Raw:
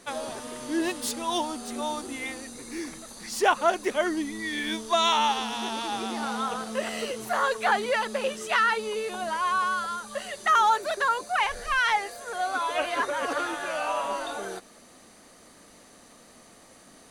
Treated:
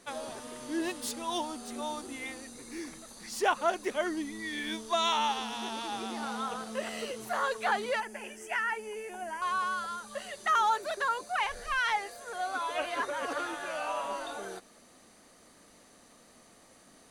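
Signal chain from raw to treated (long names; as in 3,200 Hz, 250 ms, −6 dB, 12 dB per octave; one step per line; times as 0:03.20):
0:08.00–0:09.42: phaser with its sweep stopped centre 790 Hz, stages 8
level −5.5 dB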